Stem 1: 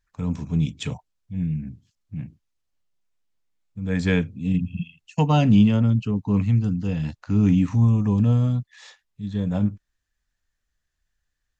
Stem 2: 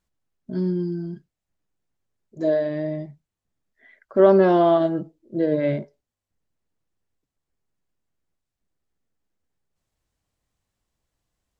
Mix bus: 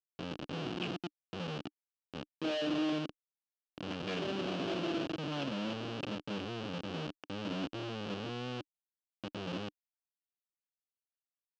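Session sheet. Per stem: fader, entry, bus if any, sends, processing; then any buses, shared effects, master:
−11.0 dB, 0.00 s, no send, no echo send, high shelf with overshoot 3,700 Hz −13.5 dB, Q 3
+2.5 dB, 0.00 s, no send, echo send −16.5 dB, high shelf with overshoot 1,900 Hz +11.5 dB, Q 1.5; downward compressor 1.5 to 1, threshold −43 dBFS, peak gain reduction 12 dB; automatic ducking −15 dB, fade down 0.85 s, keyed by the first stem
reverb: not used
echo: repeating echo 294 ms, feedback 27%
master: comparator with hysteresis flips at −38 dBFS; loudspeaker in its box 220–5,100 Hz, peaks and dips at 300 Hz +6 dB, 920 Hz −4 dB, 2,000 Hz −8 dB, 2,900 Hz +9 dB

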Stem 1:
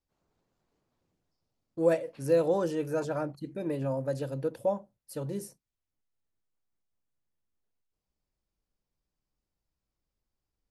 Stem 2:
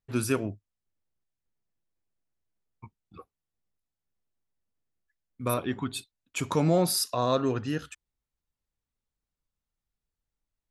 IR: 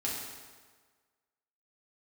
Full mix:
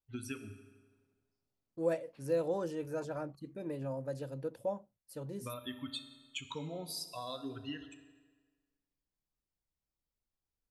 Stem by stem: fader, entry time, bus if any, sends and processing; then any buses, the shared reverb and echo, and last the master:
−7.5 dB, 0.00 s, no send, no processing
−6.0 dB, 0.00 s, send −10 dB, spectral dynamics exaggerated over time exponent 2; parametric band 3,300 Hz +13.5 dB 0.85 octaves; downward compressor 8 to 1, threshold −35 dBFS, peak gain reduction 14.5 dB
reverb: on, RT60 1.5 s, pre-delay 4 ms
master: no processing

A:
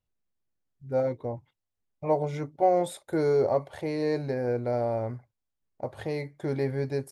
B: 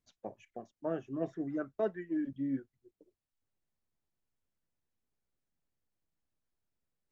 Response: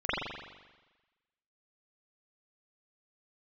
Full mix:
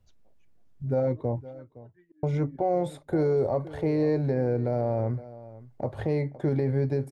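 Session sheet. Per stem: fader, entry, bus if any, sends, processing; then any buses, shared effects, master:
0.0 dB, 0.00 s, muted 0:01.60–0:02.23, no send, echo send −19.5 dB, spectral tilt −2.5 dB per octave; multiband upward and downward compressor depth 40%
−2.0 dB, 0.00 s, no send, no echo send, volume swells 347 ms; automatic ducking −12 dB, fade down 0.55 s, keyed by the first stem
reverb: not used
echo: single-tap delay 514 ms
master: brickwall limiter −17.5 dBFS, peak gain reduction 6.5 dB

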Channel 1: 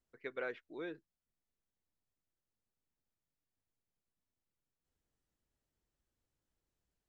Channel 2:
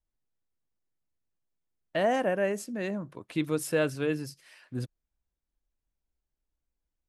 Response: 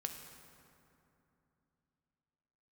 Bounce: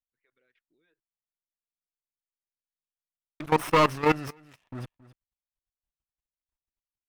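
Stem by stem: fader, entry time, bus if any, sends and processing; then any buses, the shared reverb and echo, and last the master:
−9.0 dB, 0.00 s, no send, no echo send, downward compressor 6 to 1, threshold −46 dBFS, peak gain reduction 10.5 dB; all-pass phaser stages 2, 2.9 Hz, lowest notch 190–1,000 Hz
−3.0 dB, 0.00 s, muted 0:01.93–0:03.40, no send, echo send −19.5 dB, lower of the sound and its delayed copy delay 0.35 ms; drawn EQ curve 240 Hz 0 dB, 490 Hz +2 dB, 1,100 Hz +15 dB, 6,500 Hz −4 dB; leveller curve on the samples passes 3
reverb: not used
echo: single-tap delay 271 ms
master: output level in coarse steps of 18 dB

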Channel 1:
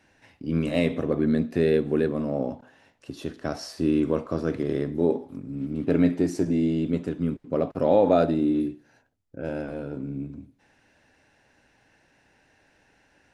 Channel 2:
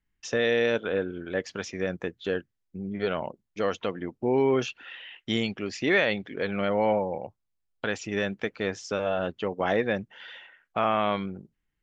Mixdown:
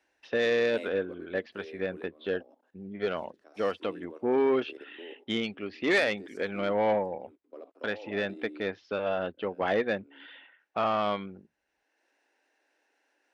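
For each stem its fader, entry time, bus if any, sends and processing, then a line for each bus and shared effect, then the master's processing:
−4.0 dB, 0.00 s, no send, Butterworth high-pass 300 Hz 36 dB per octave; output level in coarse steps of 14 dB; automatic ducking −12 dB, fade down 1.45 s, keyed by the second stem
+2.5 dB, 0.00 s, no send, Butterworth low-pass 4,100 Hz 36 dB per octave; parametric band 130 Hz −12.5 dB 0.56 octaves; expander for the loud parts 1.5 to 1, over −36 dBFS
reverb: not used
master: soft clipping −18 dBFS, distortion −15 dB; high-pass filter 72 Hz

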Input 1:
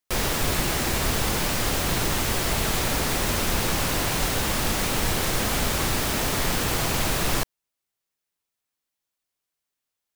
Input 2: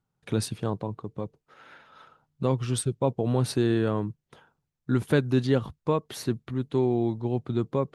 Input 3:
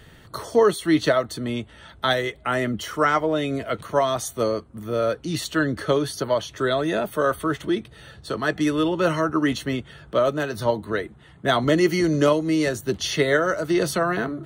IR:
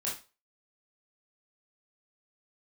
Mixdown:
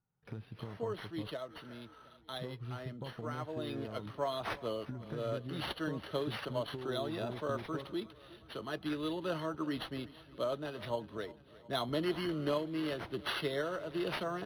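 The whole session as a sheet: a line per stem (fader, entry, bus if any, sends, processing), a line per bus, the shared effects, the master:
muted
−5.0 dB, 0.00 s, bus A, no send, no echo send, harmonic and percussive parts rebalanced percussive −9 dB; downward compressor, threshold −31 dBFS, peak gain reduction 11 dB
0:03.33 −22.5 dB → 0:03.80 −15.5 dB, 0.25 s, no bus, no send, echo send −19.5 dB, drawn EQ curve 1,000 Hz 0 dB, 1,900 Hz −8 dB, 3,100 Hz +2 dB
bus A: 0.0 dB, low-pass filter 2,000 Hz 12 dB per octave; downward compressor, threshold −39 dBFS, peak gain reduction 6.5 dB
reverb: not used
echo: repeating echo 360 ms, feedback 56%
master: high-shelf EQ 2,100 Hz +9 dB; linearly interpolated sample-rate reduction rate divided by 6×

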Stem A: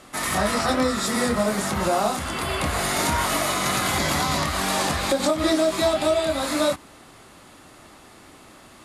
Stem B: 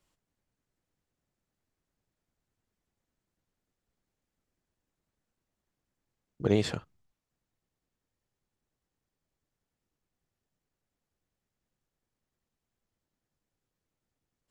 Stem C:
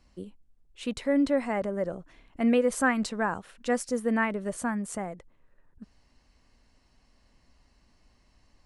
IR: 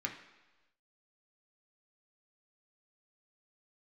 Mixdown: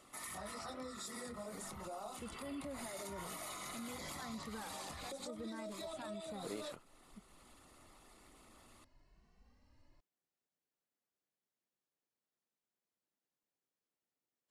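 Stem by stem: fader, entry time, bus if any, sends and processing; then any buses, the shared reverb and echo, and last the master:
+2.0 dB, 0.00 s, bus A, no send, spectral envelope exaggerated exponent 1.5; first-order pre-emphasis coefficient 0.9; notch filter 1,600 Hz, Q 7.4
−8.0 dB, 0.00 s, no bus, no send, high-pass filter 250 Hz 12 dB per octave
−1.5 dB, 1.35 s, bus A, no send, brickwall limiter −21.5 dBFS, peak gain reduction 10 dB; barber-pole flanger 2.2 ms +1 Hz
bus A: 0.0 dB, high-shelf EQ 2,400 Hz −9 dB; brickwall limiter −28 dBFS, peak gain reduction 8 dB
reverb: not used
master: downward compressor 1.5 to 1, threshold −59 dBFS, peak gain reduction 11 dB

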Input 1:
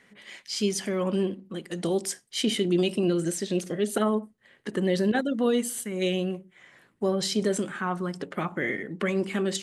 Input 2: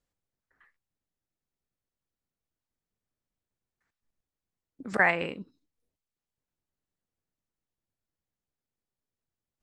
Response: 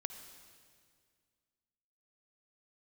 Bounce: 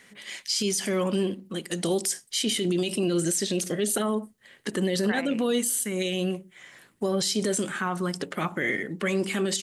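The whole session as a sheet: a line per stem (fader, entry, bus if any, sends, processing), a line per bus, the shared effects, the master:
+2.0 dB, 0.00 s, no send, high-shelf EQ 3,500 Hz +11.5 dB
−6.5 dB, 0.10 s, no send, no processing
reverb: not used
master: brickwall limiter −17 dBFS, peak gain reduction 9.5 dB

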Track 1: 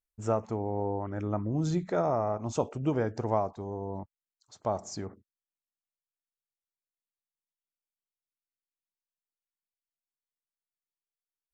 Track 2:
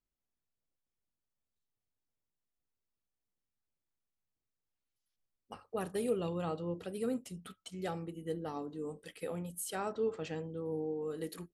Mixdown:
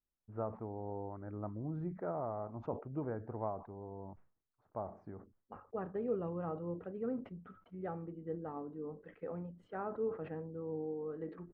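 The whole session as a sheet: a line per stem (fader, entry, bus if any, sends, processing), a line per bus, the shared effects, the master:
−11.0 dB, 0.10 s, no send, no processing
−3.0 dB, 0.00 s, no send, no processing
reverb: not used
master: low-pass filter 1,600 Hz 24 dB per octave; level that may fall only so fast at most 140 dB per second

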